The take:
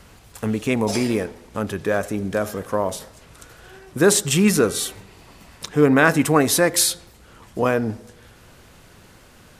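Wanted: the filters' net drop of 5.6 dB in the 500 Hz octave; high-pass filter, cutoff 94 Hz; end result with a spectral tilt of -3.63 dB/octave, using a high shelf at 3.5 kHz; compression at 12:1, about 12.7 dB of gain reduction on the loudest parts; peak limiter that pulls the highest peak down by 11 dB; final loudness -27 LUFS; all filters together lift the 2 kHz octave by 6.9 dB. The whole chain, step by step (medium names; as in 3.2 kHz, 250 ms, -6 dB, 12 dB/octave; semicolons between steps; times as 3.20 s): high-pass 94 Hz; peaking EQ 500 Hz -7.5 dB; peaking EQ 2 kHz +8 dB; treble shelf 3.5 kHz +7.5 dB; compression 12:1, threshold -20 dBFS; trim +1 dB; peak limiter -15 dBFS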